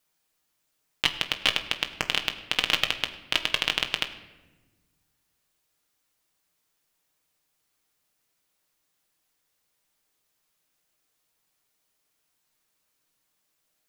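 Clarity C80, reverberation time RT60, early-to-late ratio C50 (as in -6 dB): 13.5 dB, 1.2 s, 12.0 dB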